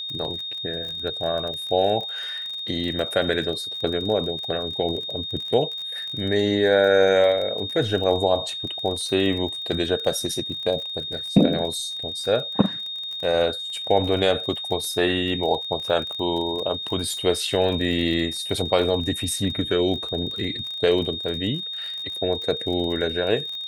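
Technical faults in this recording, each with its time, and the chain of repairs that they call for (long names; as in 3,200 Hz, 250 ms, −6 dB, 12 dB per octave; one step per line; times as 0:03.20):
surface crackle 32 per second −30 dBFS
whistle 3,700 Hz −29 dBFS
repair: click removal
notch filter 3,700 Hz, Q 30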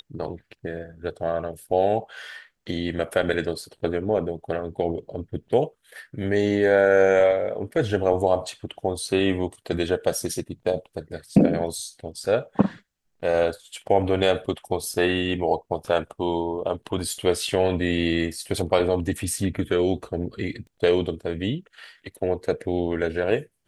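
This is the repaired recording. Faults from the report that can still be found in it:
none of them is left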